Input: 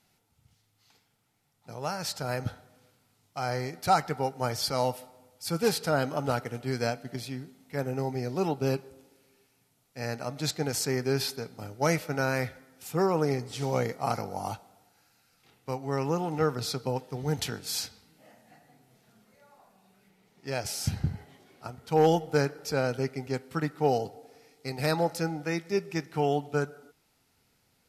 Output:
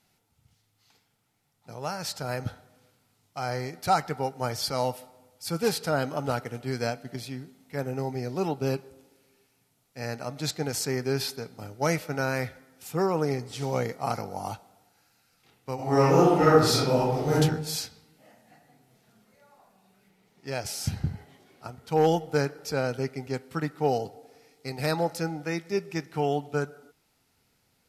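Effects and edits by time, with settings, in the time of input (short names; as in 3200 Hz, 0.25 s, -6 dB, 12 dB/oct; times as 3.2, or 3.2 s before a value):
15.75–17.34 reverb throw, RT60 0.83 s, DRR -10 dB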